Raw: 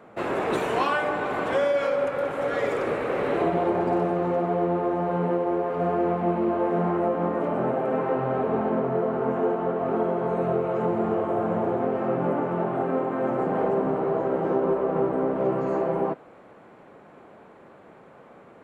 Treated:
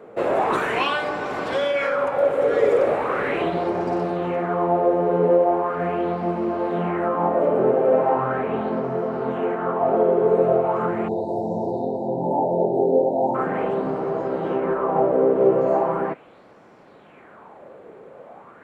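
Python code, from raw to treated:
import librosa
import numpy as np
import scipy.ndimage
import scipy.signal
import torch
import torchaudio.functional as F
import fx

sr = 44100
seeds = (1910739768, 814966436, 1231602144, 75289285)

y = fx.spec_erase(x, sr, start_s=11.08, length_s=2.26, low_hz=1000.0, high_hz=3600.0)
y = fx.bell_lfo(y, sr, hz=0.39, low_hz=430.0, high_hz=5500.0, db=12)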